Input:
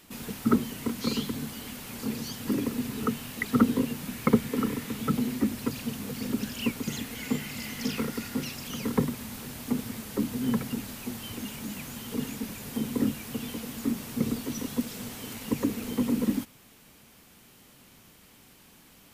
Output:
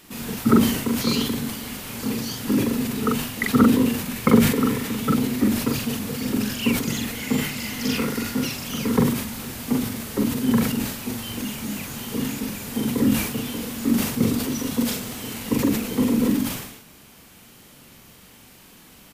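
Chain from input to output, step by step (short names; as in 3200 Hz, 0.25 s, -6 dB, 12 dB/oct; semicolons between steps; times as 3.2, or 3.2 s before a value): doubler 43 ms -3 dB; sustainer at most 64 dB/s; gain +5 dB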